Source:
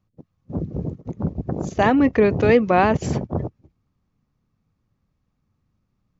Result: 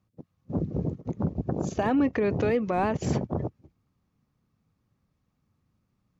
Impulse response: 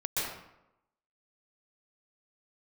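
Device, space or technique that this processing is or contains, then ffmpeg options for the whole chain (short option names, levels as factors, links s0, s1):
podcast mastering chain: -filter_complex "[0:a]asettb=1/sr,asplit=3[s0][s1][s2];[s0]atrim=end=1.394[s3];[s1]atrim=start=1.39:end=2.09,asetpts=PTS-STARTPTS,afade=t=in:d=0.004:c=qsin,afade=t=out:st=0.696:d=0.004:c=qsin,bandreject=f=2000:w=9.7[s4];[s2]atrim=start=2.086[s5];[s3][s4]acrossfade=d=0.004:c1=hsin:c2=qsin[s6];[s6][s5]acrossfade=d=0.004:c1=qsin:c2=hsin,highpass=f=70:p=1,deesser=0.85,acompressor=threshold=0.0794:ratio=2,alimiter=limit=0.158:level=0:latency=1:release=130" -ar 48000 -c:a libmp3lame -b:a 96k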